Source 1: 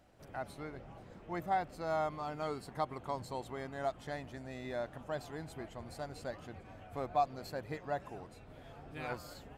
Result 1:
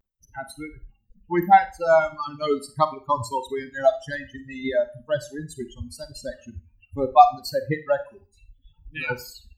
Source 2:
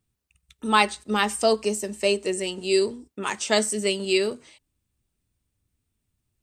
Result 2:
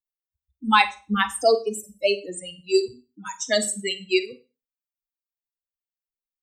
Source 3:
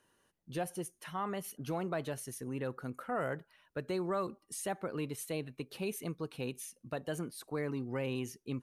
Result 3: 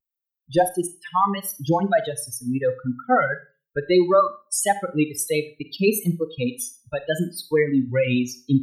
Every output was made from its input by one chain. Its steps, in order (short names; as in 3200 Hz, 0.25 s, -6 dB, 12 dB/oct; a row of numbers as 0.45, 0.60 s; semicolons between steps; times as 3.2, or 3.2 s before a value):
per-bin expansion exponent 3; reverb removal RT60 1.1 s; vibrato 0.71 Hz 48 cents; Schroeder reverb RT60 0.32 s, combs from 33 ms, DRR 11.5 dB; match loudness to -23 LUFS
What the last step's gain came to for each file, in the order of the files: +22.0, +5.5, +23.0 dB